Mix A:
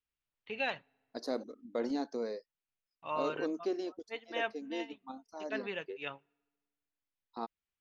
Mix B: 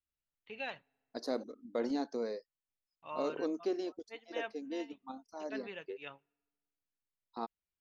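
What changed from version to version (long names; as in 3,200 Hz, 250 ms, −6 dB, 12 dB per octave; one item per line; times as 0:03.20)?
first voice −6.5 dB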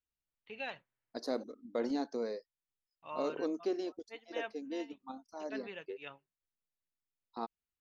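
reverb: off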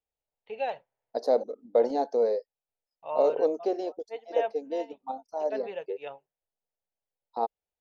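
master: add flat-topped bell 620 Hz +14 dB 1.3 octaves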